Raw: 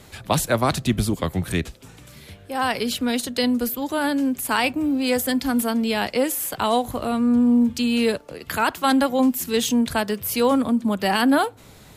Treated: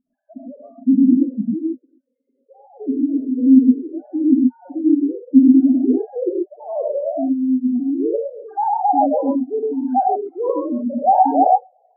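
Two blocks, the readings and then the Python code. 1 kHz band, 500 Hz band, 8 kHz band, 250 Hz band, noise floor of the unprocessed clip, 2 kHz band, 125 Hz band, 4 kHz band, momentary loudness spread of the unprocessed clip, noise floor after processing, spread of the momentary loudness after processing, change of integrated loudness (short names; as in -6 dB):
+6.5 dB, +1.5 dB, under -40 dB, +5.5 dB, -47 dBFS, under -35 dB, under -10 dB, under -40 dB, 6 LU, -71 dBFS, 12 LU, +4.0 dB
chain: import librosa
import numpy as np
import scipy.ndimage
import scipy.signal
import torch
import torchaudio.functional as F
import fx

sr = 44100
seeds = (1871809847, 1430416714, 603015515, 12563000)

p1 = fx.sine_speech(x, sr)
p2 = fx.over_compress(p1, sr, threshold_db=-22.0, ratio=-1.0)
p3 = p1 + F.gain(torch.from_numpy(p2), 1.0).numpy()
p4 = fx.filter_sweep_lowpass(p3, sr, from_hz=250.0, to_hz=770.0, start_s=5.21, end_s=7.87, q=5.9)
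p5 = fx.spec_topn(p4, sr, count=4)
p6 = fx.rev_gated(p5, sr, seeds[0], gate_ms=150, shape='rising', drr_db=-1.5)
y = F.gain(torch.from_numpy(p6), -11.0).numpy()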